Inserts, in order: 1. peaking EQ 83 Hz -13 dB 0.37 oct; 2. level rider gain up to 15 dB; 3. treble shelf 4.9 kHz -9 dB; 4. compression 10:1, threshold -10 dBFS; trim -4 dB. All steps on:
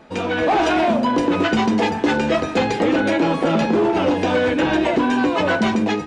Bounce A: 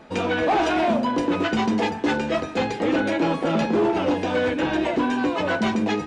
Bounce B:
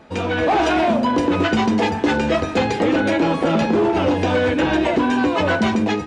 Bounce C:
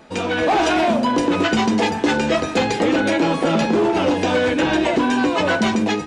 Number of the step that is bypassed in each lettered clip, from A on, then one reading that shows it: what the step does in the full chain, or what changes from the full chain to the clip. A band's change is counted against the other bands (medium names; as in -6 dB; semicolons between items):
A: 2, momentary loudness spread change +1 LU; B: 1, 125 Hz band +2.5 dB; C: 3, 8 kHz band +5.5 dB